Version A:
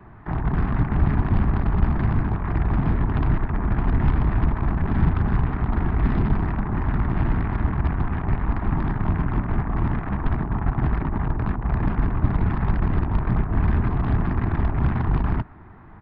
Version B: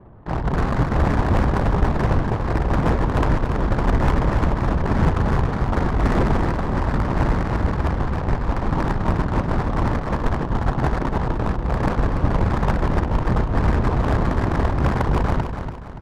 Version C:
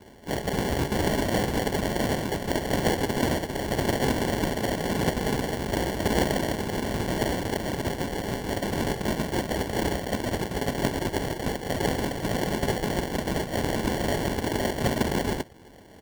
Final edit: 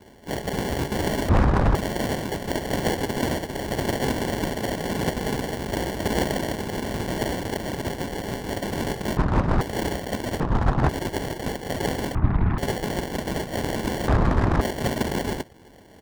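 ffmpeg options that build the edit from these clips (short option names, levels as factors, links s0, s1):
-filter_complex "[1:a]asplit=4[s0][s1][s2][s3];[2:a]asplit=6[s4][s5][s6][s7][s8][s9];[s4]atrim=end=1.292[s10];[s0]atrim=start=1.288:end=1.752[s11];[s5]atrim=start=1.748:end=9.172[s12];[s1]atrim=start=9.168:end=9.612[s13];[s6]atrim=start=9.608:end=10.402[s14];[s2]atrim=start=10.398:end=10.892[s15];[s7]atrim=start=10.888:end=12.152[s16];[0:a]atrim=start=12.148:end=12.582[s17];[s8]atrim=start=12.578:end=14.082[s18];[s3]atrim=start=14.078:end=14.612[s19];[s9]atrim=start=14.608[s20];[s10][s11]acrossfade=d=0.004:c1=hsin:c2=hsin[s21];[s21][s12]acrossfade=d=0.004:c1=hsin:c2=hsin[s22];[s22][s13]acrossfade=d=0.004:c1=hsin:c2=hsin[s23];[s23][s14]acrossfade=d=0.004:c1=hsin:c2=hsin[s24];[s24][s15]acrossfade=d=0.004:c1=hsin:c2=hsin[s25];[s25][s16]acrossfade=d=0.004:c1=hsin:c2=hsin[s26];[s26][s17]acrossfade=d=0.004:c1=hsin:c2=hsin[s27];[s27][s18]acrossfade=d=0.004:c1=hsin:c2=hsin[s28];[s28][s19]acrossfade=d=0.004:c1=hsin:c2=hsin[s29];[s29][s20]acrossfade=d=0.004:c1=hsin:c2=hsin"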